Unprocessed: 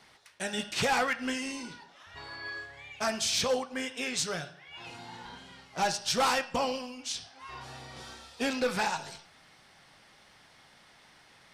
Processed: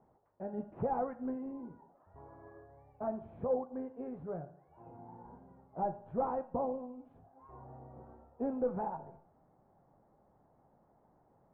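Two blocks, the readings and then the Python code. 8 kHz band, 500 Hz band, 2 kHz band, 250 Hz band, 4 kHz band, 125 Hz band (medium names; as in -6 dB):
under -40 dB, -3.0 dB, -28.5 dB, -3.0 dB, under -40 dB, -3.0 dB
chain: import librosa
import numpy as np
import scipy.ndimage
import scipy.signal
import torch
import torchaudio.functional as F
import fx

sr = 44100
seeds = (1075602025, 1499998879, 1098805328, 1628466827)

y = scipy.signal.sosfilt(scipy.signal.cheby2(4, 80, 4800.0, 'lowpass', fs=sr, output='sos'), x)
y = y * 10.0 ** (-3.0 / 20.0)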